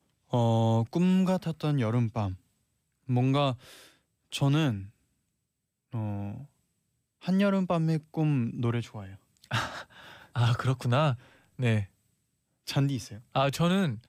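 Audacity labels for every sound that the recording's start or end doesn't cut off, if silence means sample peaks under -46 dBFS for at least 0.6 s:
3.080000	4.890000	sound
5.930000	6.460000	sound
7.220000	11.860000	sound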